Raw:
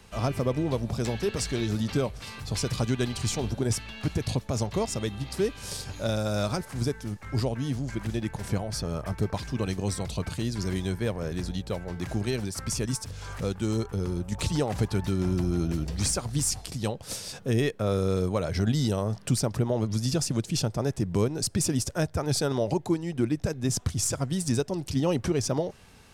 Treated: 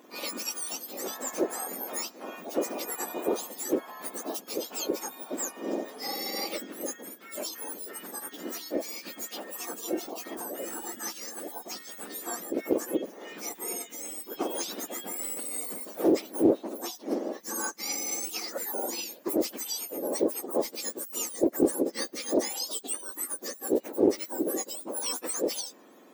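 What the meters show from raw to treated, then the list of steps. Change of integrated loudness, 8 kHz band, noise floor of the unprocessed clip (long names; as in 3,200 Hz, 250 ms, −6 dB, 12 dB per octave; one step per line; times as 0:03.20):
−3.0 dB, 0.0 dB, −47 dBFS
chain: frequency axis turned over on the octave scale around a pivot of 1,700 Hz
highs frequency-modulated by the lows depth 0.18 ms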